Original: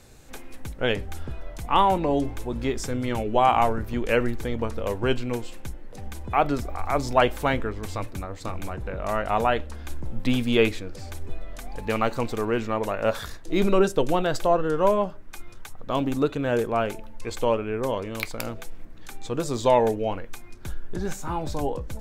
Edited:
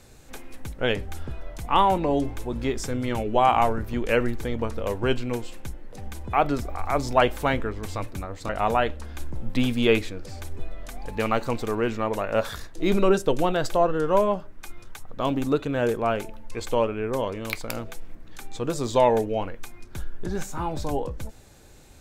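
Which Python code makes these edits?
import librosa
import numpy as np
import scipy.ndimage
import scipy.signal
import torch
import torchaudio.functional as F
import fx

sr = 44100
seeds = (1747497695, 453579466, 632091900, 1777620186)

y = fx.edit(x, sr, fx.cut(start_s=8.49, length_s=0.7), tone=tone)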